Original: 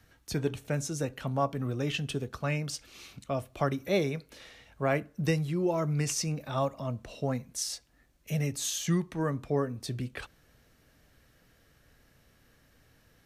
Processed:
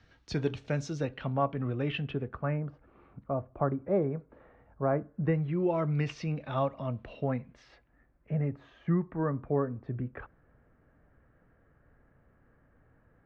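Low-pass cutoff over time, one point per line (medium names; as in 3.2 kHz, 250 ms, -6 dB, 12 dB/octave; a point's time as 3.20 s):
low-pass 24 dB/octave
0.84 s 5.1 kHz
1.37 s 2.9 kHz
2.01 s 2.9 kHz
2.68 s 1.3 kHz
5.06 s 1.3 kHz
5.75 s 3.3 kHz
6.98 s 3.3 kHz
8.32 s 1.6 kHz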